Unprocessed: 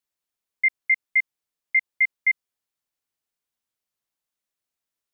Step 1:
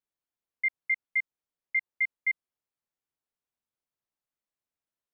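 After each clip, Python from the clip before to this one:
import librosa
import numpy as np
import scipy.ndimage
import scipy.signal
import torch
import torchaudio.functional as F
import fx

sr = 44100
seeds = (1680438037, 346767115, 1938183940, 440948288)

y = fx.high_shelf(x, sr, hz=2100.0, db=-10.0)
y = y * librosa.db_to_amplitude(-2.5)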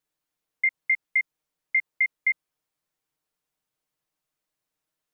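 y = x + 0.53 * np.pad(x, (int(6.5 * sr / 1000.0), 0))[:len(x)]
y = y * librosa.db_to_amplitude(7.0)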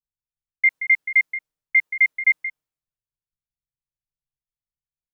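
y = x + 10.0 ** (-7.0 / 20.0) * np.pad(x, (int(178 * sr / 1000.0), 0))[:len(x)]
y = fx.band_widen(y, sr, depth_pct=100)
y = y * librosa.db_to_amplitude(4.5)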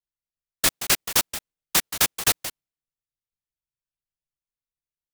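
y = fx.noise_mod_delay(x, sr, seeds[0], noise_hz=2500.0, depth_ms=0.28)
y = y * librosa.db_to_amplitude(-3.5)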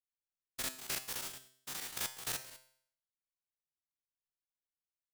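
y = fx.spec_steps(x, sr, hold_ms=100)
y = fx.comb_fb(y, sr, f0_hz=130.0, decay_s=0.62, harmonics='all', damping=0.0, mix_pct=70)
y = y * librosa.db_to_amplitude(-3.5)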